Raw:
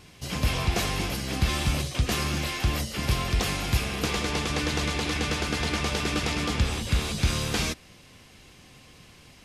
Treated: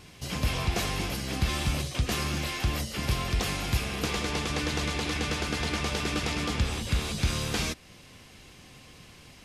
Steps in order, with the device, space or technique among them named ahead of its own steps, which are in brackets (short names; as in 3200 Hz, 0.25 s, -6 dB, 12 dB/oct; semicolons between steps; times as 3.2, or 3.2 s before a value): parallel compression (in parallel at -4 dB: compressor, threshold -38 dBFS, peak gain reduction 18.5 dB); on the sum: gain -3.5 dB